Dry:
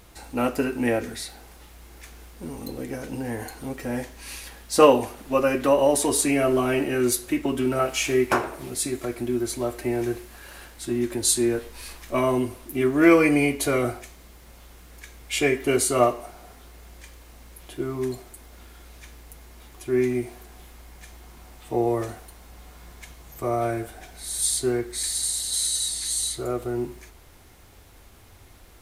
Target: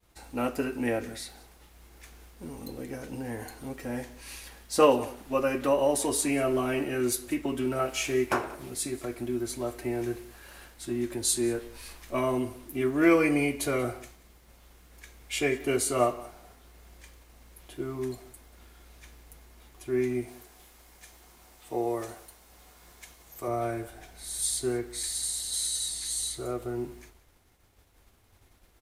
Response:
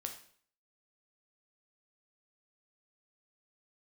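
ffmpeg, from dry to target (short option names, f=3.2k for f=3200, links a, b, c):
-filter_complex "[0:a]agate=range=-33dB:threshold=-44dB:ratio=3:detection=peak,asettb=1/sr,asplit=3[a][b][c];[a]atrim=end=20.284[d];[b]atrim=start=20.28:end=23.48,asetpts=PTS-STARTPTS,afade=t=in:d=0.004:c=qsin,afade=t=out:st=3.196:d=0.004:c=qsin,bass=f=250:g=-7,treble=f=4k:g=4[e];[c]atrim=start=23.476[f];[d][e]acrossfade=d=0.004:c1=hsin:c2=qsin[g];[g][f]acrossfade=d=0.004:c1=qsin:c2=hsin,aecho=1:1:184:0.0944,volume=-5.5dB"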